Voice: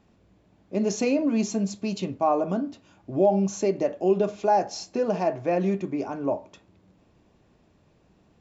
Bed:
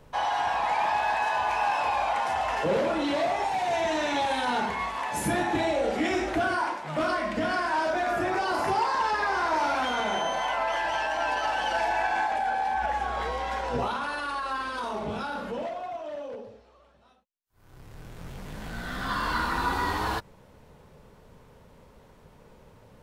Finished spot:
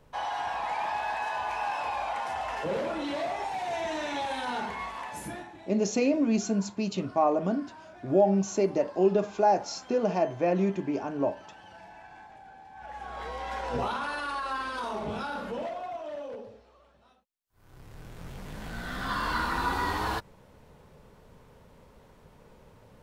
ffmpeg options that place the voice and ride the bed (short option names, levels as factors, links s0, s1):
-filter_complex "[0:a]adelay=4950,volume=0.841[s0];[1:a]volume=6.31,afade=t=out:st=4.93:d=0.62:silence=0.133352,afade=t=in:st=12.72:d=1.12:silence=0.0841395[s1];[s0][s1]amix=inputs=2:normalize=0"